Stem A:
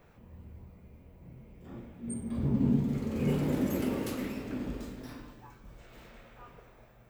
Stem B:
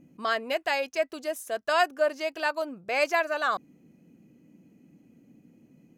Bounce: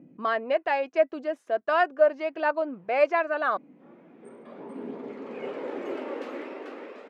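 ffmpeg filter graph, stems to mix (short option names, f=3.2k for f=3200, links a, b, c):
-filter_complex "[0:a]highpass=f=380:w=0.5412,highpass=f=380:w=1.3066,adelay=2150,volume=2.5dB,asplit=2[a][b];[b]volume=-5dB[c];[1:a]equalizer=f=430:w=0.55:g=5,volume=-1dB,asplit=2[d][e];[e]apad=whole_len=407754[f];[a][f]sidechaincompress=threshold=-36dB:ratio=8:attack=9.3:release=562[g];[c]aecho=0:1:441:1[h];[g][d][h]amix=inputs=3:normalize=0,aphaser=in_gain=1:out_gain=1:delay=4:decay=0.26:speed=0.4:type=triangular,highpass=140,lowpass=2.2k"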